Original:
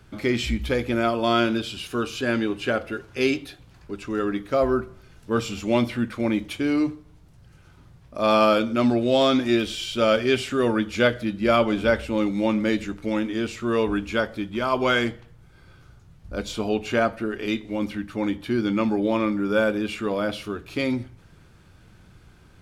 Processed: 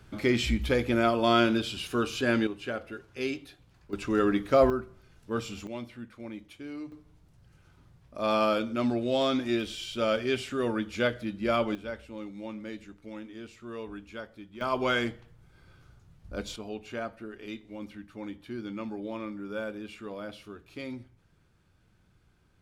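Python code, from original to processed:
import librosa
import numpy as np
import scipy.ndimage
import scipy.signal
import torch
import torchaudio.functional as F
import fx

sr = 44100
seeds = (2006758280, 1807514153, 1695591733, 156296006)

y = fx.gain(x, sr, db=fx.steps((0.0, -2.0), (2.47, -10.0), (3.93, 0.5), (4.7, -8.0), (5.67, -17.5), (6.92, -7.5), (11.75, -17.0), (14.61, -6.0), (16.56, -14.0)))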